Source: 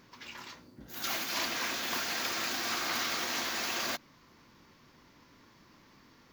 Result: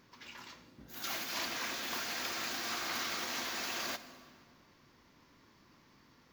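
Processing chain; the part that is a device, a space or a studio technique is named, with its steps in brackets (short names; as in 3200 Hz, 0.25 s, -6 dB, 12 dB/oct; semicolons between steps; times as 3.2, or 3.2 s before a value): saturated reverb return (on a send at -10 dB: reverb RT60 1.9 s, pre-delay 24 ms + soft clip -32.5 dBFS, distortion -13 dB); on the sum: gain -4.5 dB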